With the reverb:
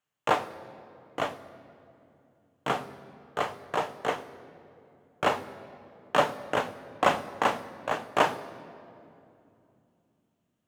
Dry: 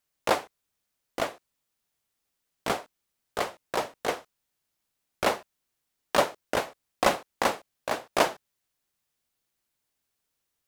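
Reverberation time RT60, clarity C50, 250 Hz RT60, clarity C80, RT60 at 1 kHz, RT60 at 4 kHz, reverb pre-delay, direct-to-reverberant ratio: 2.8 s, 15.5 dB, 4.4 s, 16.0 dB, 2.5 s, 1.7 s, 3 ms, 9.0 dB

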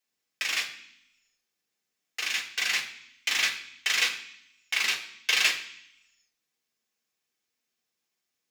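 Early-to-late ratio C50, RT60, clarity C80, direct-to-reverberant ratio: 9.5 dB, 0.65 s, 13.0 dB, -2.0 dB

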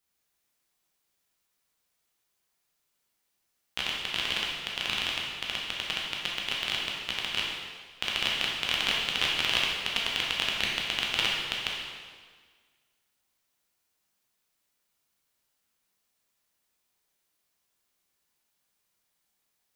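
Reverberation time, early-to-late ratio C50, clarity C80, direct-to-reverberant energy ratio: 1.6 s, 0.0 dB, 2.5 dB, -3.5 dB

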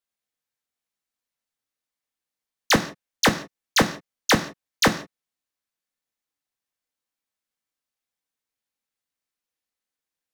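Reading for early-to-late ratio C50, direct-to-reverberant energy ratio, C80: 13.0 dB, 4.5 dB, 16.0 dB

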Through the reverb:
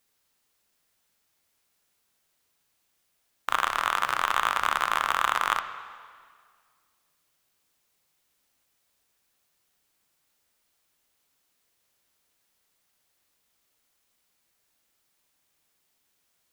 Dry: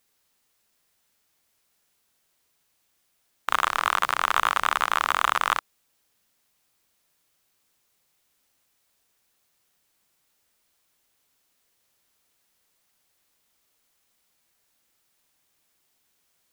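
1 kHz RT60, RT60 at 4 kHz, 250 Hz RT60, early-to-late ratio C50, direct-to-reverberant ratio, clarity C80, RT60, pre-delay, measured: 1.9 s, 1.8 s, 1.9 s, 10.0 dB, 9.0 dB, 11.5 dB, 1.9 s, 6 ms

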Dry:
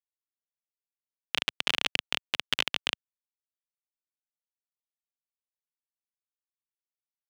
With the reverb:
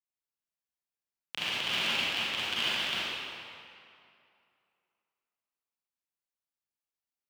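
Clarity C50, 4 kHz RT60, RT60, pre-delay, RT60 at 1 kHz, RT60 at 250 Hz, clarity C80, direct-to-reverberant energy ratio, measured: -7.0 dB, 1.8 s, 2.5 s, 34 ms, 2.5 s, 2.3 s, -4.5 dB, -10.5 dB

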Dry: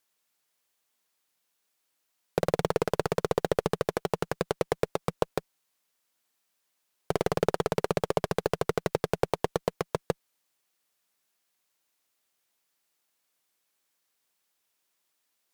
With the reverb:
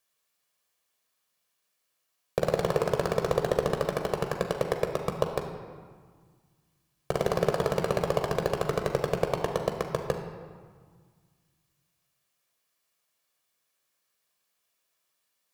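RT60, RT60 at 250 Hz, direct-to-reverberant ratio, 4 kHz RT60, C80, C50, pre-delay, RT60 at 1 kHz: 1.7 s, 2.1 s, 3.5 dB, 1.1 s, 7.0 dB, 6.0 dB, 15 ms, 1.8 s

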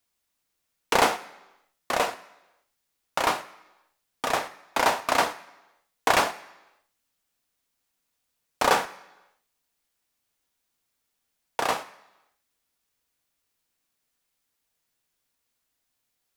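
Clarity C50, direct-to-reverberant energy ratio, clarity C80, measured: 16.0 dB, 9.0 dB, 18.0 dB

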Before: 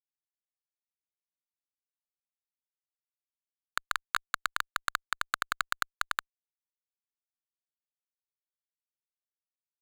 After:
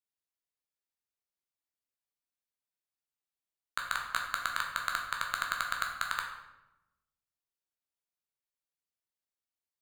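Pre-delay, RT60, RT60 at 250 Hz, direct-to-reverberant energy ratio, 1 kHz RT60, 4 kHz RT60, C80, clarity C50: 10 ms, 0.95 s, 1.3 s, 0.5 dB, 0.90 s, 0.65 s, 7.0 dB, 4.5 dB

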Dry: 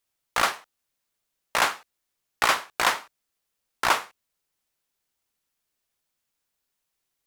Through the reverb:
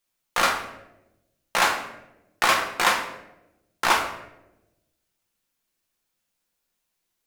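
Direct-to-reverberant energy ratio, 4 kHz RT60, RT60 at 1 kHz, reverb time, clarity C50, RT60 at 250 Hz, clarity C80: 1.0 dB, 0.60 s, 0.75 s, 0.95 s, 7.5 dB, 1.3 s, 10.0 dB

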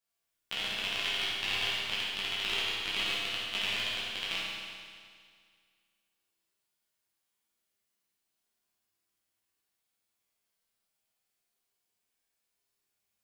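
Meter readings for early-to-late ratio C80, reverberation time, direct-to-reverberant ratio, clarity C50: -0.5 dB, 2.0 s, -9.0 dB, -3.0 dB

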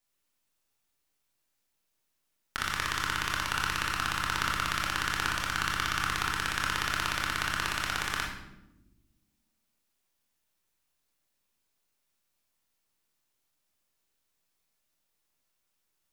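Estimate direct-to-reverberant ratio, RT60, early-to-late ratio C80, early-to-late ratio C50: -1.5 dB, not exponential, 7.0 dB, 3.5 dB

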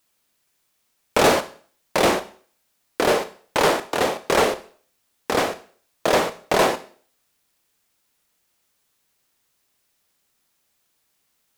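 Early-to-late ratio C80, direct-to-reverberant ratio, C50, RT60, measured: 19.0 dB, 11.5 dB, 14.5 dB, 0.50 s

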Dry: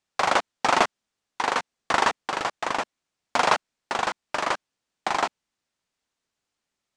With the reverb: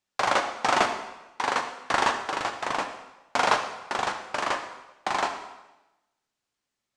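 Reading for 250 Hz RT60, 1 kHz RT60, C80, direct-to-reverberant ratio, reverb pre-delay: 1.0 s, 1.0 s, 10.0 dB, 5.0 dB, 4 ms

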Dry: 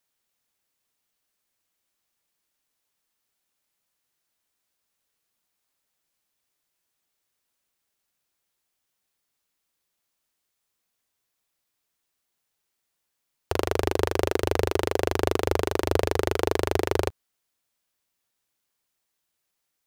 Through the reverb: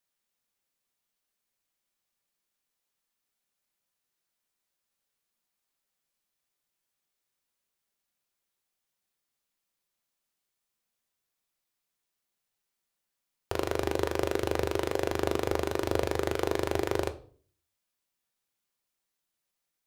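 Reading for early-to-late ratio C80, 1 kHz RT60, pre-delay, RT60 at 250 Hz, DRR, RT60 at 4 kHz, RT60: 20.0 dB, 0.40 s, 4 ms, 0.65 s, 8.0 dB, 0.40 s, 0.45 s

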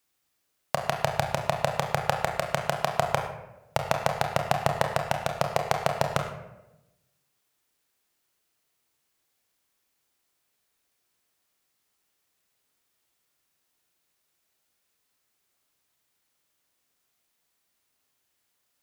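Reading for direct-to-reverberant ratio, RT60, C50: 3.0 dB, 0.95 s, 6.5 dB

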